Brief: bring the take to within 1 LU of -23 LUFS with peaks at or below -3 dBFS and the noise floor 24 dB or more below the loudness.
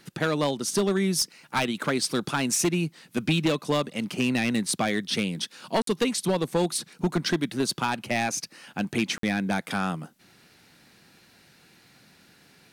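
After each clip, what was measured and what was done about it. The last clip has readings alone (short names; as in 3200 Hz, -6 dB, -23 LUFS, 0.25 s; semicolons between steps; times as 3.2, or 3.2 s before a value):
clipped 1.1%; flat tops at -17.5 dBFS; dropouts 2; longest dropout 53 ms; loudness -27.0 LUFS; peak -17.5 dBFS; loudness target -23.0 LUFS
-> clip repair -17.5 dBFS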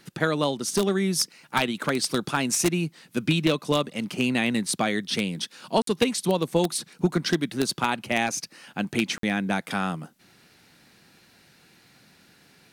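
clipped 0.0%; dropouts 2; longest dropout 53 ms
-> interpolate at 5.82/9.18, 53 ms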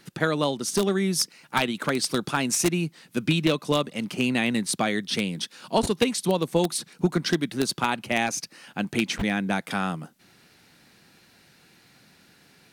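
dropouts 0; loudness -25.5 LUFS; peak -8.5 dBFS; loudness target -23.0 LUFS
-> gain +2.5 dB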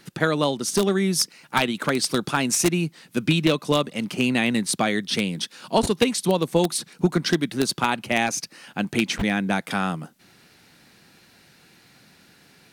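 loudness -23.0 LUFS; peak -6.0 dBFS; noise floor -56 dBFS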